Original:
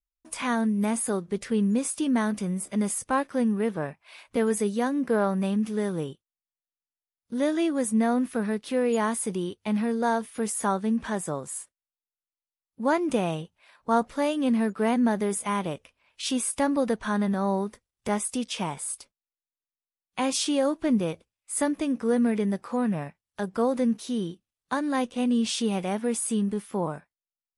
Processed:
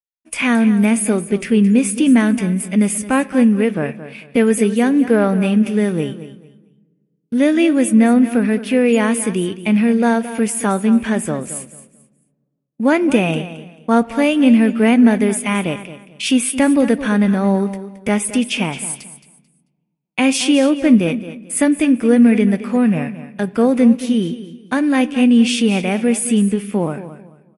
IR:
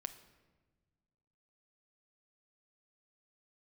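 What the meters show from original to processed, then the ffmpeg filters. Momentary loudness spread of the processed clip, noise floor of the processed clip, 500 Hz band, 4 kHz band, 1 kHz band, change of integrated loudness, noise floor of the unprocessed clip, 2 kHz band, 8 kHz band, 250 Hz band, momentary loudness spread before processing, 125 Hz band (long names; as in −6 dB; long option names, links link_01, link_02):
12 LU, −66 dBFS, +9.0 dB, +10.0 dB, +5.0 dB, +11.5 dB, below −85 dBFS, +12.5 dB, +8.0 dB, +12.5 dB, 9 LU, +11.5 dB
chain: -filter_complex "[0:a]bandreject=frequency=3900:width=14,agate=range=-33dB:threshold=-43dB:ratio=3:detection=peak,equalizer=frequency=250:width_type=o:width=0.67:gain=5,equalizer=frequency=1000:width_type=o:width=0.67:gain=-7,equalizer=frequency=2500:width_type=o:width=0.67:gain=11,equalizer=frequency=10000:width_type=o:width=0.67:gain=4,aecho=1:1:220|440|660:0.211|0.0507|0.0122,asplit=2[link_01][link_02];[1:a]atrim=start_sample=2205,lowpass=3400[link_03];[link_02][link_03]afir=irnorm=-1:irlink=0,volume=-2dB[link_04];[link_01][link_04]amix=inputs=2:normalize=0,volume=5dB"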